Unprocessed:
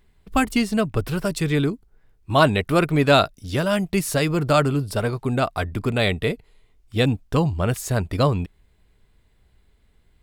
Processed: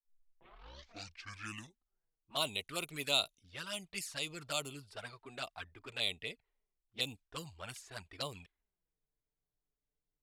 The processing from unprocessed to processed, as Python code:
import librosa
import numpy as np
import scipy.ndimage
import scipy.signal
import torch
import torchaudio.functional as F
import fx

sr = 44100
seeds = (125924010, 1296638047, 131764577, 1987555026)

y = fx.tape_start_head(x, sr, length_s=2.05)
y = fx.env_lowpass(y, sr, base_hz=540.0, full_db=-14.5)
y = scipy.signal.lfilter([1.0, -0.97], [1.0], y)
y = fx.env_flanger(y, sr, rest_ms=6.8, full_db=-34.0)